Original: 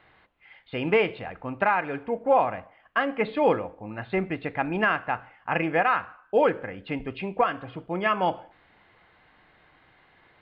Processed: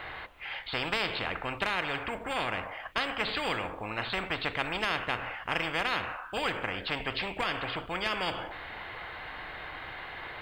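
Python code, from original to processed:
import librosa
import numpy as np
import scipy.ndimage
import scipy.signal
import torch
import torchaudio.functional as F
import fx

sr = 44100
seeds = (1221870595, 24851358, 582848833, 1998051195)

y = fx.peak_eq(x, sr, hz=200.0, db=-9.5, octaves=1.9)
y = fx.spectral_comp(y, sr, ratio=4.0)
y = y * 10.0 ** (-3.0 / 20.0)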